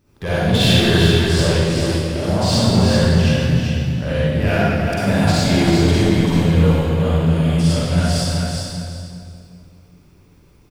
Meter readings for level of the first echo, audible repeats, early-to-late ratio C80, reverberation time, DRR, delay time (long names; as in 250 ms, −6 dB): −4.5 dB, 1, −4.5 dB, 2.4 s, −11.5 dB, 387 ms